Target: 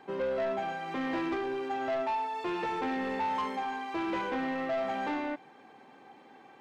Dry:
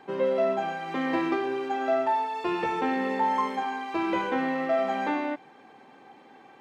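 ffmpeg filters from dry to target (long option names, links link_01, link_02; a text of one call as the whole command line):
ffmpeg -i in.wav -af "asoftclip=type=tanh:threshold=-24.5dB,volume=-2.5dB" out.wav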